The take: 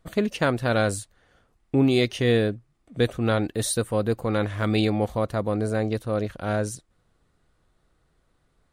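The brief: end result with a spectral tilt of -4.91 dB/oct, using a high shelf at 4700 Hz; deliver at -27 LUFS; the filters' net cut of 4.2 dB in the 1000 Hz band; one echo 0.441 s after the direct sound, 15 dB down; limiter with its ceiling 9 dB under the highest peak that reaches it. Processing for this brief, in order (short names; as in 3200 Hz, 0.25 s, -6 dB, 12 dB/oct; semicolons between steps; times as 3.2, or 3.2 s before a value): bell 1000 Hz -7 dB; high shelf 4700 Hz +8 dB; limiter -16.5 dBFS; echo 0.441 s -15 dB; gain +1 dB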